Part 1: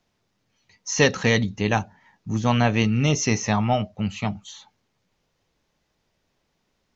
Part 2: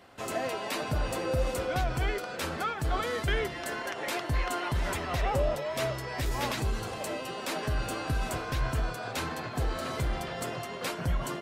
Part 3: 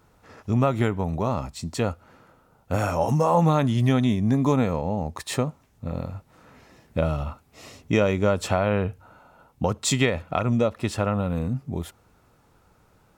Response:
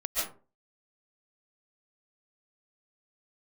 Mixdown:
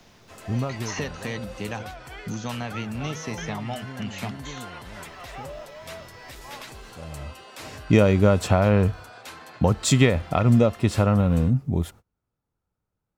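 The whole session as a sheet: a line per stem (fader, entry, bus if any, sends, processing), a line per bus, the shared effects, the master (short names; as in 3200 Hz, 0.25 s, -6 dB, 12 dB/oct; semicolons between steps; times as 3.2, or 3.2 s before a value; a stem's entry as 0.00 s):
-11.5 dB, 0.00 s, no send, three-band squash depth 100%
-9.0 dB, 0.10 s, no send, low shelf 450 Hz -10.5 dB; AGC gain up to 3.5 dB
+0.5 dB, 0.00 s, no send, gate -47 dBFS, range -28 dB; low shelf 280 Hz +7.5 dB; auto duck -24 dB, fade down 1.35 s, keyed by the first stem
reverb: off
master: dry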